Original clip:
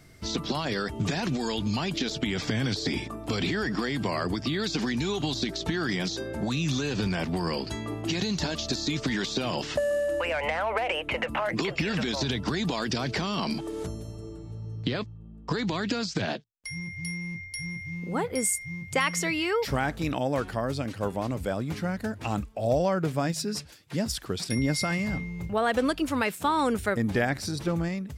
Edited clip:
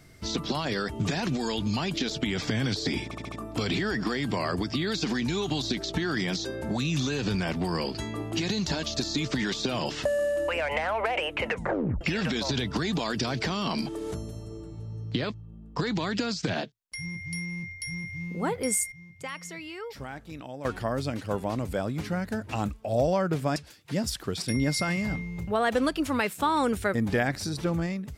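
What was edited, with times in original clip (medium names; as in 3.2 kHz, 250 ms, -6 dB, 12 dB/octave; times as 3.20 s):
3.04 s: stutter 0.07 s, 5 plays
11.21 s: tape stop 0.52 s
18.64–20.37 s: gain -12 dB
23.28–23.58 s: delete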